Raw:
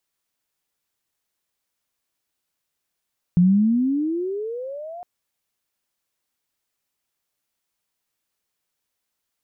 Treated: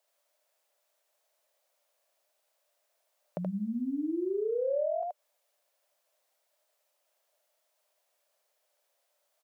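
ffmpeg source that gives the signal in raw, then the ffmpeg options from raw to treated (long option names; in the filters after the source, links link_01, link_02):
-f lavfi -i "aevalsrc='pow(10,(-11-22*t/1.66)/20)*sin(2*PI*171*1.66/(25*log(2)/12)*(exp(25*log(2)/12*t/1.66)-1))':duration=1.66:sample_rate=44100"
-filter_complex "[0:a]highpass=frequency=600:width_type=q:width=7.3,asplit=2[link_01][link_02];[link_02]aecho=0:1:77:0.708[link_03];[link_01][link_03]amix=inputs=2:normalize=0,acompressor=threshold=-28dB:ratio=8"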